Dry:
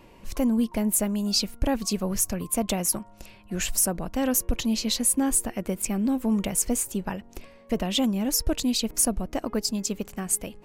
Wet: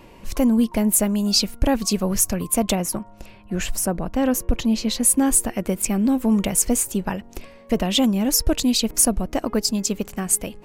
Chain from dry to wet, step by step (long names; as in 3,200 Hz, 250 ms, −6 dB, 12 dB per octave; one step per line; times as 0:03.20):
0:02.75–0:05.03: high-shelf EQ 2,800 Hz −8.5 dB
level +5.5 dB